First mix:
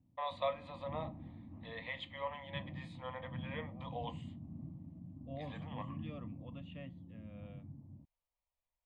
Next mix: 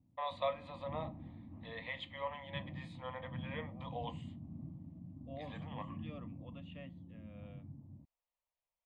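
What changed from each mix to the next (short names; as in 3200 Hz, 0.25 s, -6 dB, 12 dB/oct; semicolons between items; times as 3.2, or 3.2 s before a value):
second voice: add low shelf 140 Hz -11 dB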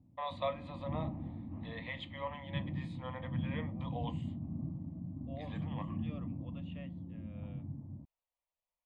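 background +7.5 dB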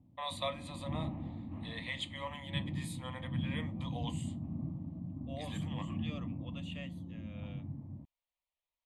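first voice -5.0 dB; master: remove tape spacing loss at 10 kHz 37 dB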